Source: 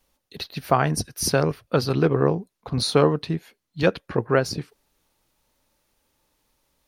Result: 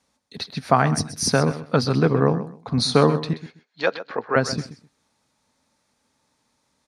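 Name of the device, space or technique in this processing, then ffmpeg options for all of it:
car door speaker: -filter_complex "[0:a]asettb=1/sr,asplit=3[a][b][c];[a]atrim=end=3.334[d];[b]atrim=start=3.33:end=4.36,asetpts=PTS-STARTPTS,afade=t=in:d=0.004:c=qsin,afade=t=out:st=1.026:d=0.004:c=qsin,acrossover=split=370 6100:gain=0.0631 1 0.0891[e][f][g];[e][f][g]amix=inputs=3:normalize=0[h];[c]atrim=start=4.356[i];[d][h]acrossfade=d=0.004:c1=hsin:c2=qsin[j];[j][i]acrossfade=d=0.004:c1=qsin:c2=hsin,highpass=100,equalizer=f=240:t=q:w=4:g=5,equalizer=f=350:t=q:w=4:g=-7,equalizer=f=540:t=q:w=4:g=-3,equalizer=f=2.9k:t=q:w=4:g=-7,lowpass=f=9.1k:w=0.5412,lowpass=f=9.1k:w=1.3066,aecho=1:1:129|258:0.211|0.0423,volume=3dB"

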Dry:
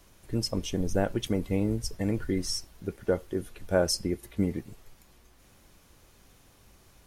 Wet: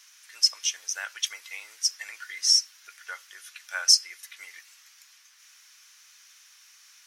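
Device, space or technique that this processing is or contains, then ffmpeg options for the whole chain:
headphones lying on a table: -af "highpass=f=1.5k:w=0.5412,highpass=f=1.5k:w=1.3066,highshelf=f=5.8k:g=-7,equalizer=f=5.8k:t=o:w=0.5:g=10,volume=8.5dB"

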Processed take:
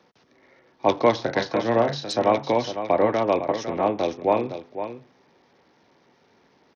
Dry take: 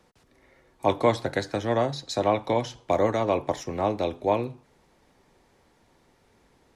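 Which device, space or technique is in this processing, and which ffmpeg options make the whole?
Bluetooth headset: -filter_complex "[0:a]asplit=3[a][b][c];[a]afade=t=out:st=1.18:d=0.02[d];[b]asplit=2[e][f];[f]adelay=35,volume=-7.5dB[g];[e][g]amix=inputs=2:normalize=0,afade=t=in:st=1.18:d=0.02,afade=t=out:st=2.07:d=0.02[h];[c]afade=t=in:st=2.07:d=0.02[i];[d][h][i]amix=inputs=3:normalize=0,highpass=160,aecho=1:1:505:0.316,aresample=16000,aresample=44100,volume=3dB" -ar 48000 -c:a sbc -b:a 64k

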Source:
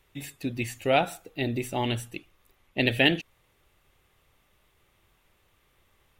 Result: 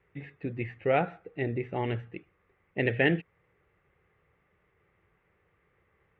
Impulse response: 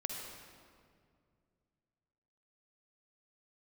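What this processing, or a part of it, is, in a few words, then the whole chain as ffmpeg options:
bass cabinet: -af "highpass=63,equalizer=f=170:t=q:w=4:g=5,equalizer=f=250:t=q:w=4:g=-6,equalizer=f=450:t=q:w=4:g=6,equalizer=f=640:t=q:w=4:g=-4,equalizer=f=950:t=q:w=4:g=-4,equalizer=f=2k:t=q:w=4:g=4,lowpass=f=2.1k:w=0.5412,lowpass=f=2.1k:w=1.3066,volume=-1.5dB"

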